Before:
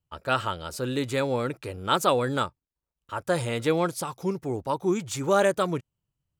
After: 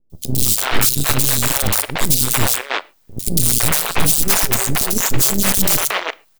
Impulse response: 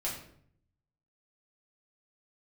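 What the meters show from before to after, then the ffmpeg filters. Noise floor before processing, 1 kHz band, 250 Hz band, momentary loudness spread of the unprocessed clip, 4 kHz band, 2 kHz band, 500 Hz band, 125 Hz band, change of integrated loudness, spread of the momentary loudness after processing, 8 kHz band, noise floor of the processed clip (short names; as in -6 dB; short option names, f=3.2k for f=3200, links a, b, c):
under -85 dBFS, +3.5 dB, +5.0 dB, 10 LU, +14.0 dB, +11.0 dB, -2.0 dB, +10.0 dB, +11.5 dB, 6 LU, +23.0 dB, -56 dBFS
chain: -filter_complex "[0:a]aemphasis=mode=production:type=riaa,aexciter=amount=9.9:drive=4:freq=3.6k,equalizer=f=320:t=o:w=1.6:g=7,bandreject=f=470:w=12,areverse,acompressor=threshold=-17dB:ratio=10,areverse,aeval=exprs='(mod(4.73*val(0)+1,2)-1)/4.73':c=same,aeval=exprs='0.224*(cos(1*acos(clip(val(0)/0.224,-1,1)))-cos(1*PI/2))+0.0708*(cos(3*acos(clip(val(0)/0.224,-1,1)))-cos(3*PI/2))+0.0158*(cos(4*acos(clip(val(0)/0.224,-1,1)))-cos(4*PI/2))+0.0316*(cos(6*acos(clip(val(0)/0.224,-1,1)))-cos(6*PI/2))+0.0141*(cos(8*acos(clip(val(0)/0.224,-1,1)))-cos(8*PI/2))':c=same,highpass=f=240:w=0.5412,highpass=f=240:w=1.3066,aeval=exprs='max(val(0),0)':c=same,acrossover=split=440|3300[a][b][c];[c]adelay=100[d];[b]adelay=330[e];[a][e][d]amix=inputs=3:normalize=0,asplit=2[f][g];[1:a]atrim=start_sample=2205,afade=t=out:st=0.19:d=0.01,atrim=end_sample=8820[h];[g][h]afir=irnorm=-1:irlink=0,volume=-20dB[i];[f][i]amix=inputs=2:normalize=0,alimiter=level_in=20dB:limit=-1dB:release=50:level=0:latency=1,volume=-1dB"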